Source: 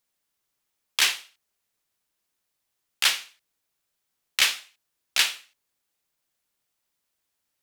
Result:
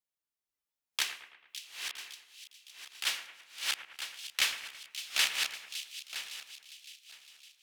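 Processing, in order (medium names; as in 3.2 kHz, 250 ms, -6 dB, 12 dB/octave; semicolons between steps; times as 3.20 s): backward echo that repeats 483 ms, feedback 41%, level -3.5 dB; 1.02–3.07 s: compression 1.5:1, threshold -39 dBFS, peak gain reduction 8 dB; two-band feedback delay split 2.6 kHz, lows 110 ms, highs 560 ms, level -11 dB; spectral noise reduction 8 dB; trim -8 dB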